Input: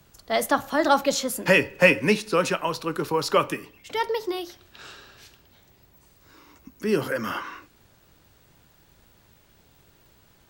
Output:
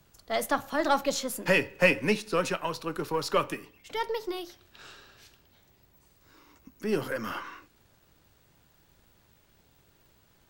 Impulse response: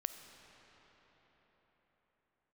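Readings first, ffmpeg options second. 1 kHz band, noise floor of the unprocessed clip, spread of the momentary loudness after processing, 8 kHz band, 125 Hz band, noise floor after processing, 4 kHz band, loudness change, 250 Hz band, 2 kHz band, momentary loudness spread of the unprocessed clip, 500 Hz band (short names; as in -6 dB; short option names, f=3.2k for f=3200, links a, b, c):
-5.5 dB, -59 dBFS, 14 LU, -5.5 dB, -5.0 dB, -64 dBFS, -5.0 dB, -5.5 dB, -5.5 dB, -5.5 dB, 14 LU, -5.5 dB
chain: -af "aeval=exprs='if(lt(val(0),0),0.708*val(0),val(0))':c=same,volume=-4dB"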